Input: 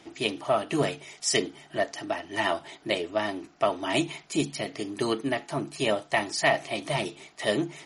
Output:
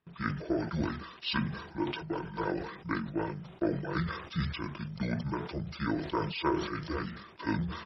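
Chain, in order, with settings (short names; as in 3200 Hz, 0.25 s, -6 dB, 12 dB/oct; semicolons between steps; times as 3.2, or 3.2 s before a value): pitch shift -11.5 st; gate with hold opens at -42 dBFS; sustainer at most 67 dB/s; gain -6.5 dB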